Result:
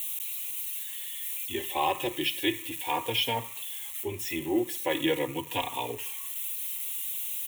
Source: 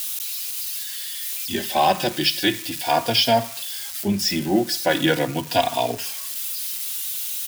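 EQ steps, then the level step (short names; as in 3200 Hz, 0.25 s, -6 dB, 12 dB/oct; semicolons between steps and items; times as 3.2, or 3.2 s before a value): fixed phaser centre 1000 Hz, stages 8; -4.5 dB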